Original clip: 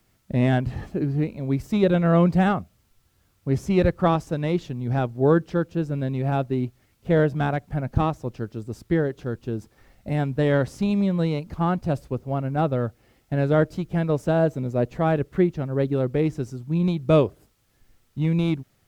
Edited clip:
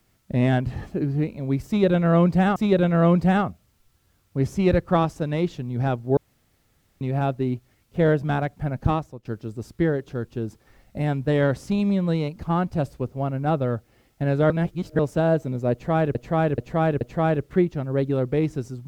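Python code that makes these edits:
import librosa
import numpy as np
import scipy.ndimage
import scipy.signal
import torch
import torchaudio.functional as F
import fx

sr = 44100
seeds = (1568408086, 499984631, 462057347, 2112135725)

y = fx.edit(x, sr, fx.repeat(start_s=1.67, length_s=0.89, count=2),
    fx.room_tone_fill(start_s=5.28, length_s=0.84),
    fx.fade_out_to(start_s=8.03, length_s=0.33, floor_db=-22.0),
    fx.reverse_span(start_s=13.61, length_s=0.49),
    fx.repeat(start_s=14.83, length_s=0.43, count=4), tone=tone)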